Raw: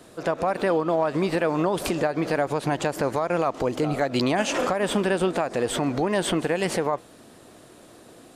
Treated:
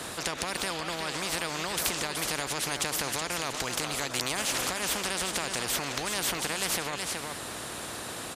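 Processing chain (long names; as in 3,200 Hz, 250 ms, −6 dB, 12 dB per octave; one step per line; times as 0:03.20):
high-pass filter 50 Hz
on a send: single-tap delay 373 ms −13.5 dB
on the sum: every bin compressed towards the loudest bin 4 to 1
level +1.5 dB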